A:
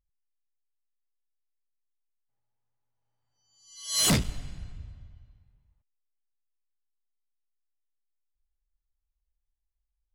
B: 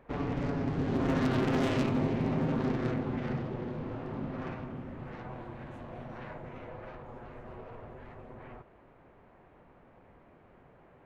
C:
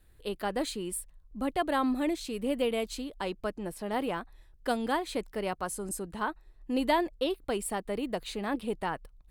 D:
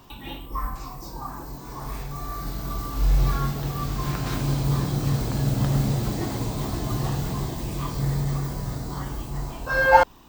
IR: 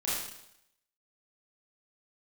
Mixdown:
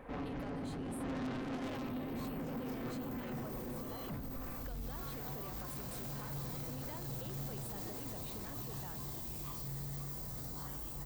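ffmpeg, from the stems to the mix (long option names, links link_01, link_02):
-filter_complex "[0:a]acompressor=threshold=-26dB:ratio=6,lowpass=1300,volume=-5.5dB[link_01];[1:a]aecho=1:1:3.9:0.31,acontrast=87,volume=-1.5dB[link_02];[2:a]acompressor=threshold=-34dB:ratio=6,volume=-11dB[link_03];[3:a]aemphasis=mode=production:type=50kf,adelay=1650,volume=-8dB[link_04];[link_02][link_04]amix=inputs=2:normalize=0,asoftclip=type=tanh:threshold=-23.5dB,alimiter=level_in=10.5dB:limit=-24dB:level=0:latency=1,volume=-10.5dB,volume=0dB[link_05];[link_01][link_03][link_05]amix=inputs=3:normalize=0,alimiter=level_in=11.5dB:limit=-24dB:level=0:latency=1:release=37,volume=-11.5dB"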